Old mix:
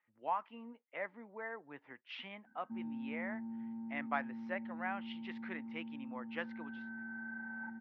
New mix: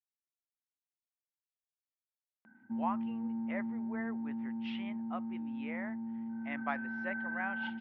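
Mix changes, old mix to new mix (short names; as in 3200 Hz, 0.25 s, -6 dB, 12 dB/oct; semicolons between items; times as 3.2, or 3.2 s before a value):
speech: entry +2.55 s; background +6.5 dB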